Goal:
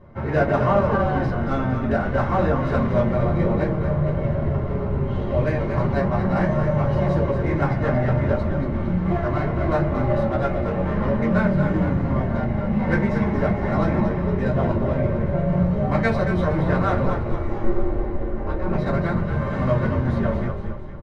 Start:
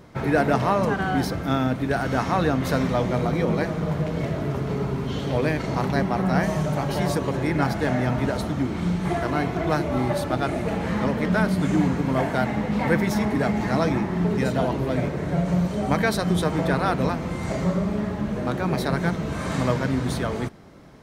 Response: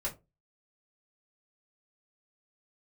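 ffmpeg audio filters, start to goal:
-filter_complex "[0:a]asettb=1/sr,asplit=3[link_01][link_02][link_03];[link_01]atrim=end=11.874[link_04];[link_02]atrim=start=11.87:end=12.88,asetpts=PTS-STARTPTS,afade=type=in:duration=0.004:curve=qsin,afade=type=out:start_time=1.006:duration=0.004:curve=qsin,acrossover=split=390|3000[link_05][link_06][link_07];[link_06]acompressor=threshold=-31dB:ratio=3[link_08];[link_05][link_08][link_07]amix=inputs=3:normalize=0[link_09];[link_03]atrim=start=12.876[link_10];[link_04][link_09]acrossfade=duration=0.004:curve1=hsin:curve2=qsin[link_11];[link_11][link_10]acrossfade=duration=0.004:curve1=qsin:curve2=hsin,asplit=3[link_12][link_13][link_14];[link_12]afade=type=out:start_time=17.05:duration=0.02[link_15];[link_13]aeval=exprs='val(0)*sin(2*PI*170*n/s)':channel_layout=same,afade=type=in:start_time=17.05:duration=0.02,afade=type=out:start_time=18.65:duration=0.02[link_16];[link_14]afade=type=in:start_time=18.65:duration=0.02[link_17];[link_15][link_16][link_17]amix=inputs=3:normalize=0,adynamicsmooth=sensitivity=1:basefreq=1900,asplit=7[link_18][link_19][link_20][link_21][link_22][link_23][link_24];[link_19]adelay=230,afreqshift=-35,volume=-7dB[link_25];[link_20]adelay=460,afreqshift=-70,volume=-12.8dB[link_26];[link_21]adelay=690,afreqshift=-105,volume=-18.7dB[link_27];[link_22]adelay=920,afreqshift=-140,volume=-24.5dB[link_28];[link_23]adelay=1150,afreqshift=-175,volume=-30.4dB[link_29];[link_24]adelay=1380,afreqshift=-210,volume=-36.2dB[link_30];[link_18][link_25][link_26][link_27][link_28][link_29][link_30]amix=inputs=7:normalize=0[link_31];[1:a]atrim=start_sample=2205[link_32];[link_31][link_32]afir=irnorm=-1:irlink=0,volume=-2.5dB"

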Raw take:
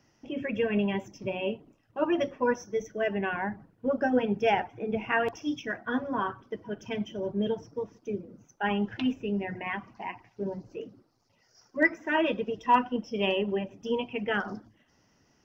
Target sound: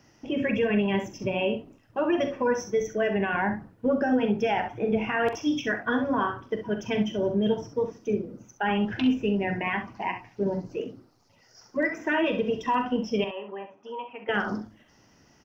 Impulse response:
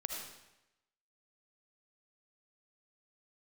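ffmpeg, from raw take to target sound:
-filter_complex "[0:a]alimiter=limit=-23.5dB:level=0:latency=1:release=94,asettb=1/sr,asplit=3[link_01][link_02][link_03];[link_01]atrim=end=13.244[link_04];[link_02]atrim=start=13.24:end=14.29,asetpts=PTS-STARTPTS,afade=type=in:duration=0.004:curve=qsin,afade=type=out:start_time=1.046:duration=0.004:curve=qsin,bandpass=frequency=1100:width_type=q:width=2:csg=0[link_05];[link_03]atrim=start=14.286[link_06];[link_04][link_05]acrossfade=duration=0.004:curve1=hsin:curve2=qsin[link_07];[link_07][link_06]acrossfade=duration=0.004:curve1=qsin:curve2=hsin,aecho=1:1:43|66:0.282|0.316,volume=6.5dB"

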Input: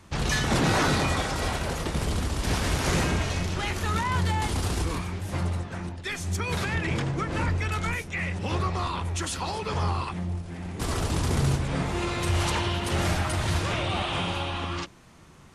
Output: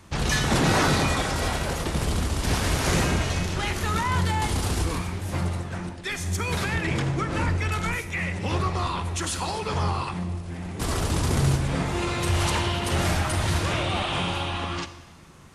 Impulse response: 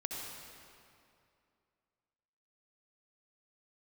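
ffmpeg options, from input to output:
-filter_complex "[0:a]asplit=2[link_01][link_02];[1:a]atrim=start_sample=2205,asetrate=79380,aresample=44100,highshelf=frequency=7500:gain=12[link_03];[link_02][link_03]afir=irnorm=-1:irlink=0,volume=-5.5dB[link_04];[link_01][link_04]amix=inputs=2:normalize=0"

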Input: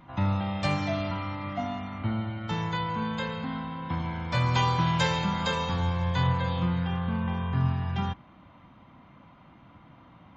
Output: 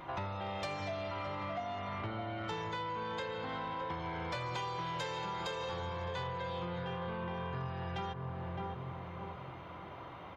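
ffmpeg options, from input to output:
ffmpeg -i in.wav -filter_complex "[0:a]lowshelf=frequency=310:width_type=q:width=3:gain=-7,asplit=2[link_01][link_02];[link_02]adelay=613,lowpass=frequency=1000:poles=1,volume=-9dB,asplit=2[link_03][link_04];[link_04]adelay=613,lowpass=frequency=1000:poles=1,volume=0.41,asplit=2[link_05][link_06];[link_06]adelay=613,lowpass=frequency=1000:poles=1,volume=0.41,asplit=2[link_07][link_08];[link_08]adelay=613,lowpass=frequency=1000:poles=1,volume=0.41,asplit=2[link_09][link_10];[link_10]adelay=613,lowpass=frequency=1000:poles=1,volume=0.41[link_11];[link_03][link_05][link_07][link_09][link_11]amix=inputs=5:normalize=0[link_12];[link_01][link_12]amix=inputs=2:normalize=0,acompressor=threshold=-42dB:ratio=8,asoftclip=type=tanh:threshold=-37.5dB,volume=7dB" out.wav

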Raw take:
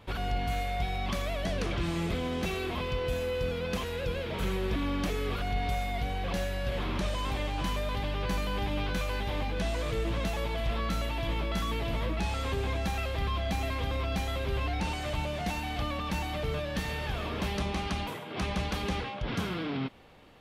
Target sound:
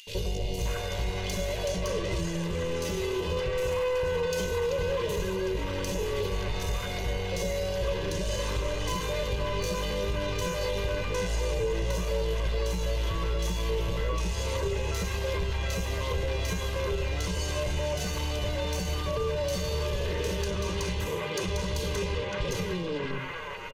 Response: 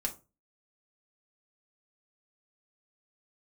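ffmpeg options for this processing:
-filter_complex "[0:a]acrossover=split=130[link_01][link_02];[link_02]acompressor=mode=upward:threshold=-52dB:ratio=2.5[link_03];[link_01][link_03]amix=inputs=2:normalize=0,equalizer=frequency=500:width_type=o:width=0.33:gain=6,equalizer=frequency=800:width_type=o:width=0.33:gain=-5,equalizer=frequency=6300:width_type=o:width=0.33:gain=10,asoftclip=type=tanh:threshold=-31.5dB,asplit=2[link_04][link_05];[1:a]atrim=start_sample=2205,asetrate=32634,aresample=44100[link_06];[link_05][link_06]afir=irnorm=-1:irlink=0,volume=-5.5dB[link_07];[link_04][link_07]amix=inputs=2:normalize=0,atempo=0.86,bandreject=frequency=1400:width=7.7,acrossover=split=740|2600[link_08][link_09][link_10];[link_08]adelay=70[link_11];[link_09]adelay=580[link_12];[link_11][link_12][link_10]amix=inputs=3:normalize=0,acompressor=threshold=-33dB:ratio=6,aeval=exprs='val(0)+0.00316*sin(2*PI*2800*n/s)':channel_layout=same,aecho=1:1:2:0.59,volume=5dB"

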